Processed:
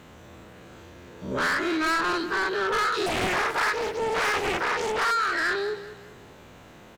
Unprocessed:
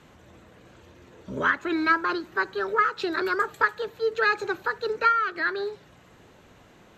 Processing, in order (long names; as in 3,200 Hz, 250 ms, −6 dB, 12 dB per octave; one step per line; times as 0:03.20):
every bin's largest magnitude spread in time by 120 ms
in parallel at −11 dB: wave folding −22 dBFS
on the sum: bit reduction 11 bits
soft clipping −19.5 dBFS, distortion −10 dB
on a send: repeating echo 194 ms, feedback 38%, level −14 dB
0:03.06–0:05.11: on the sum: highs frequency-modulated by the lows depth 0.94 ms
level −2 dB